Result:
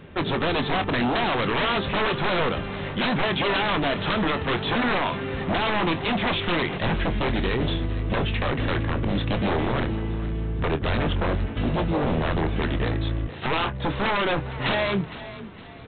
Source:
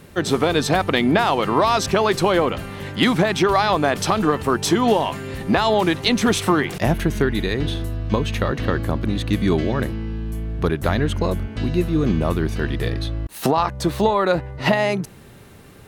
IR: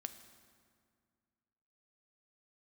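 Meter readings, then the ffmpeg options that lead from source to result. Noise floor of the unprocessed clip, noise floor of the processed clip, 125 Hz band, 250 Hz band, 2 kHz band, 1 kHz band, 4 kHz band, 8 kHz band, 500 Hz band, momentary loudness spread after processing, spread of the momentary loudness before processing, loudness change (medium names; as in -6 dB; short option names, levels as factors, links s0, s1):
-44 dBFS, -38 dBFS, -3.5 dB, -5.5 dB, -1.0 dB, -5.0 dB, -2.0 dB, under -40 dB, -6.0 dB, 5 LU, 7 LU, -4.5 dB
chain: -filter_complex "[0:a]aresample=8000,aeval=exprs='0.119*(abs(mod(val(0)/0.119+3,4)-2)-1)':c=same,aresample=44100,asplit=2[s0][s1];[s1]adelay=25,volume=0.282[s2];[s0][s2]amix=inputs=2:normalize=0,asplit=5[s3][s4][s5][s6][s7];[s4]adelay=461,afreqshift=33,volume=0.178[s8];[s5]adelay=922,afreqshift=66,volume=0.0708[s9];[s6]adelay=1383,afreqshift=99,volume=0.0285[s10];[s7]adelay=1844,afreqshift=132,volume=0.0114[s11];[s3][s8][s9][s10][s11]amix=inputs=5:normalize=0"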